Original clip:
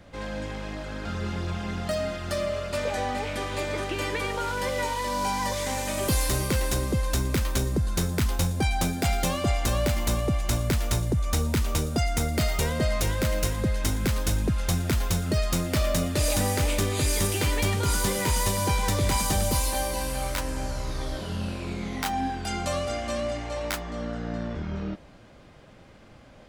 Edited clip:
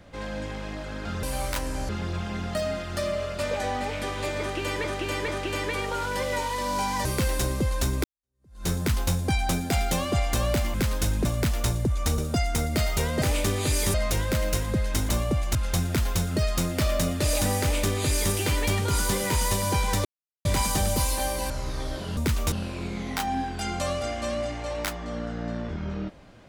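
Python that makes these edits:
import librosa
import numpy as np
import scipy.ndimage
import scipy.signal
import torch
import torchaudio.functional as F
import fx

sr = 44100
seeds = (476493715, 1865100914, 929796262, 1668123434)

y = fx.edit(x, sr, fx.repeat(start_s=3.74, length_s=0.44, count=3),
    fx.cut(start_s=5.51, length_s=0.86),
    fx.fade_in_span(start_s=7.36, length_s=0.64, curve='exp'),
    fx.swap(start_s=10.06, length_s=0.46, other_s=13.99, other_length_s=0.51),
    fx.move(start_s=11.45, length_s=0.35, to_s=21.38),
    fx.duplicate(start_s=16.56, length_s=0.72, to_s=12.84),
    fx.insert_silence(at_s=19.0, length_s=0.4),
    fx.move(start_s=20.05, length_s=0.66, to_s=1.23), tone=tone)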